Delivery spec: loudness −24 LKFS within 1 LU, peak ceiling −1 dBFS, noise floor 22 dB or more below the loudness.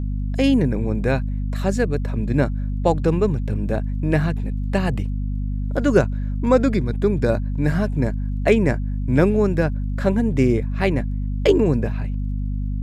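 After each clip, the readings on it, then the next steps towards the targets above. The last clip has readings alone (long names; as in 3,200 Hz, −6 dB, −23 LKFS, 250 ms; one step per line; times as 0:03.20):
crackle rate 21 per second; mains hum 50 Hz; hum harmonics up to 250 Hz; level of the hum −21 dBFS; integrated loudness −21.5 LKFS; sample peak −3.0 dBFS; target loudness −24.0 LKFS
→ click removal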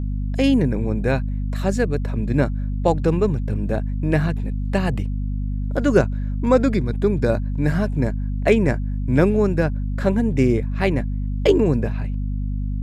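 crackle rate 0.078 per second; mains hum 50 Hz; hum harmonics up to 250 Hz; level of the hum −21 dBFS
→ hum removal 50 Hz, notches 5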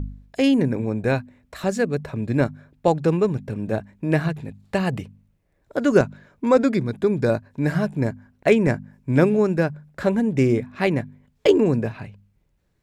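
mains hum none found; integrated loudness −22.0 LKFS; sample peak −3.0 dBFS; target loudness −24.0 LKFS
→ level −2 dB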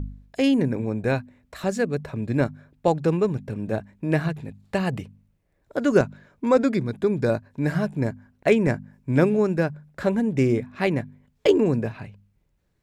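integrated loudness −24.0 LKFS; sample peak −5.0 dBFS; background noise floor −69 dBFS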